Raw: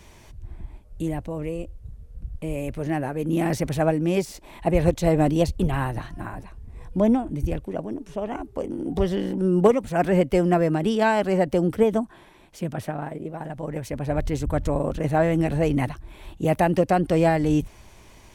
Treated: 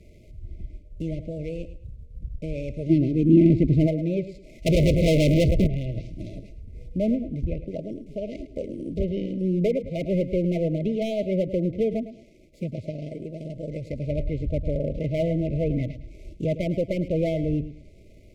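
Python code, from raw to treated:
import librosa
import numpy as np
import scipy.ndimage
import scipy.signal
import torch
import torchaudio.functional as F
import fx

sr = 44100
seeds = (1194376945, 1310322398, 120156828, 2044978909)

y = scipy.signal.medfilt(x, 15)
y = fx.dynamic_eq(y, sr, hz=320.0, q=1.2, threshold_db=-35.0, ratio=4.0, max_db=-5)
y = fx.env_lowpass_down(y, sr, base_hz=1700.0, full_db=-19.5)
y = np.clip(y, -10.0 ** (-18.0 / 20.0), 10.0 ** (-18.0 / 20.0))
y = fx.echo_feedback(y, sr, ms=107, feedback_pct=27, wet_db=-13)
y = fx.leveller(y, sr, passes=5, at=(4.66, 5.67))
y = fx.brickwall_bandstop(y, sr, low_hz=670.0, high_hz=2000.0)
y = fx.low_shelf_res(y, sr, hz=430.0, db=8.0, q=3.0, at=(2.89, 3.86), fade=0.02)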